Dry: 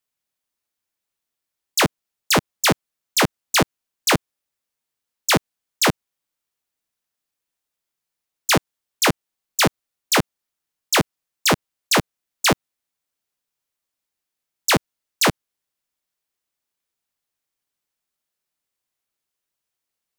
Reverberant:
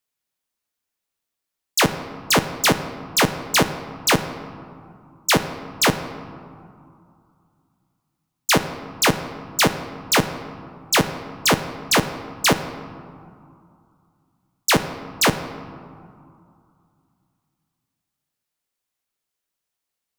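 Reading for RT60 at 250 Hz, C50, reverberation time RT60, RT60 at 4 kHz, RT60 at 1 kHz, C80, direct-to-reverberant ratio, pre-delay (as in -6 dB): 2.7 s, 11.0 dB, 2.5 s, 1.0 s, 2.7 s, 12.0 dB, 9.0 dB, 4 ms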